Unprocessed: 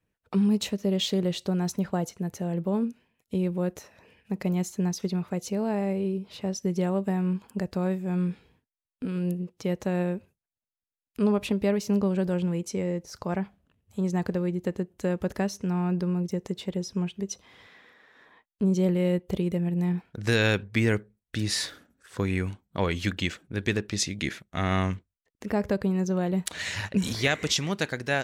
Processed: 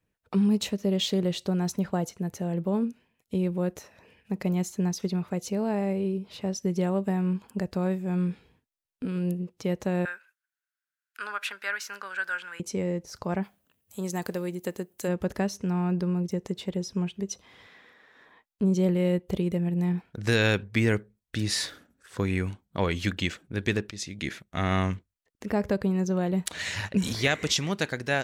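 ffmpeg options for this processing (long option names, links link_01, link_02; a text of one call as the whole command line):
ffmpeg -i in.wav -filter_complex "[0:a]asettb=1/sr,asplit=3[link_01][link_02][link_03];[link_01]atrim=end=10.054[link_04];[link_02]atrim=start=10.05:end=12.6,asetpts=PTS-STARTPTS,afade=type=in:duration=0.004:curve=qsin,afade=type=out:start_time=2.546:duration=0.004:curve=qsin,highpass=frequency=1500:width_type=q:width=9.7[link_05];[link_03]atrim=start=12.596[link_06];[link_04][link_05]acrossfade=duration=0.004:curve1=hsin:curve2=qsin[link_07];[link_07][link_06]acrossfade=duration=0.004:curve1=qsin:curve2=hsin,asplit=3[link_08][link_09][link_10];[link_08]afade=type=out:start_time=13.42:duration=0.02[link_11];[link_09]aemphasis=mode=production:type=bsi,afade=type=in:start_time=13.42:duration=0.02,afade=type=out:start_time=15.07:duration=0.02[link_12];[link_10]afade=type=in:start_time=15.07:duration=0.02[link_13];[link_11][link_12][link_13]amix=inputs=3:normalize=0,asplit=2[link_14][link_15];[link_14]atrim=end=23.91,asetpts=PTS-STARTPTS,afade=type=out:start_time=23.906:duration=0.004:curve=hsin:silence=0.223872[link_16];[link_15]atrim=start=23.91,asetpts=PTS-STARTPTS,afade=type=in:duration=0.51:silence=0.223872[link_17];[link_16][link_17]concat=n=2:v=0:a=1" out.wav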